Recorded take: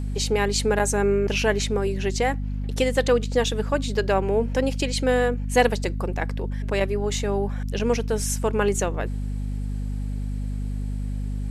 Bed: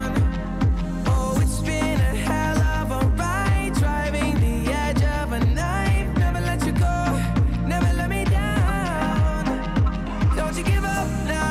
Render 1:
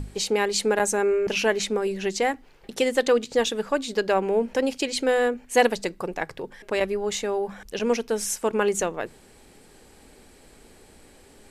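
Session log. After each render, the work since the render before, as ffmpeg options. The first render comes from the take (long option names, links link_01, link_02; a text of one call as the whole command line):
ffmpeg -i in.wav -af "bandreject=frequency=50:width_type=h:width=6,bandreject=frequency=100:width_type=h:width=6,bandreject=frequency=150:width_type=h:width=6,bandreject=frequency=200:width_type=h:width=6,bandreject=frequency=250:width_type=h:width=6" out.wav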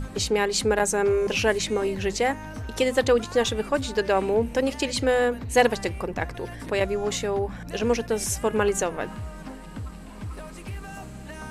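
ffmpeg -i in.wav -i bed.wav -filter_complex "[1:a]volume=-15.5dB[link_01];[0:a][link_01]amix=inputs=2:normalize=0" out.wav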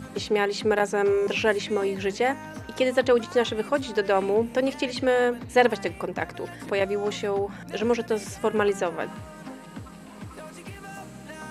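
ffmpeg -i in.wav -filter_complex "[0:a]highpass=140,acrossover=split=3900[link_01][link_02];[link_02]acompressor=threshold=-42dB:ratio=4:attack=1:release=60[link_03];[link_01][link_03]amix=inputs=2:normalize=0" out.wav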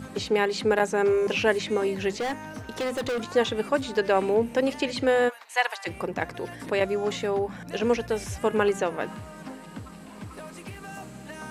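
ffmpeg -i in.wav -filter_complex "[0:a]asettb=1/sr,asplit=3[link_01][link_02][link_03];[link_01]atrim=end=2.184[link_04];[link_02]atrim=start=2.18:end=3.27,asetpts=PTS-STARTPTS,afade=type=in:duration=0.004:curve=qsin,afade=type=out:start_time=1.086:duration=0.004:curve=qsin,volume=25.5dB,asoftclip=hard,volume=-25.5dB[link_05];[link_03]atrim=start=3.266[link_06];[link_04][link_05]acrossfade=duration=0.004:curve1=hsin:curve2=qsin[link_07];[link_07][link_06]acrossfade=duration=0.004:curve1=qsin:curve2=hsin,asplit=3[link_08][link_09][link_10];[link_08]afade=type=out:start_time=5.28:duration=0.02[link_11];[link_09]highpass=frequency=800:width=0.5412,highpass=frequency=800:width=1.3066,afade=type=in:start_time=5.28:duration=0.02,afade=type=out:start_time=5.86:duration=0.02[link_12];[link_10]afade=type=in:start_time=5.86:duration=0.02[link_13];[link_11][link_12][link_13]amix=inputs=3:normalize=0,asplit=3[link_14][link_15][link_16];[link_14]afade=type=out:start_time=7.96:duration=0.02[link_17];[link_15]asubboost=boost=6.5:cutoff=80,afade=type=in:start_time=7.96:duration=0.02,afade=type=out:start_time=8.36:duration=0.02[link_18];[link_16]afade=type=in:start_time=8.36:duration=0.02[link_19];[link_17][link_18][link_19]amix=inputs=3:normalize=0" out.wav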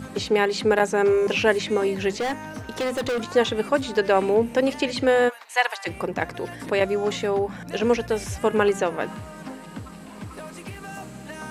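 ffmpeg -i in.wav -af "volume=3dB" out.wav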